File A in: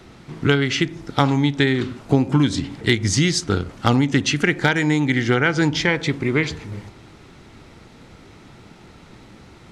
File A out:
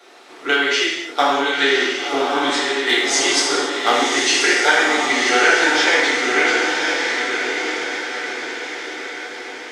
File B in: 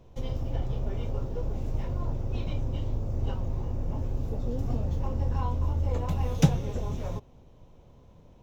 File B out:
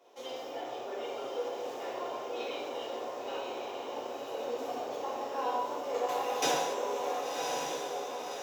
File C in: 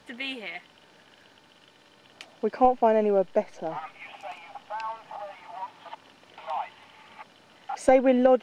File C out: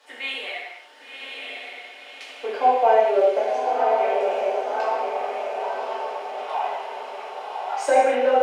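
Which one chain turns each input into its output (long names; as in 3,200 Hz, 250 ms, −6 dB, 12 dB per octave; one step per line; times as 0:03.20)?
high-pass filter 440 Hz 24 dB per octave
on a send: feedback delay with all-pass diffusion 1,086 ms, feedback 53%, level −3.5 dB
on the sum: reverb whose tail is shaped and stops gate 320 ms falling, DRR −7.5 dB
level −2.5 dB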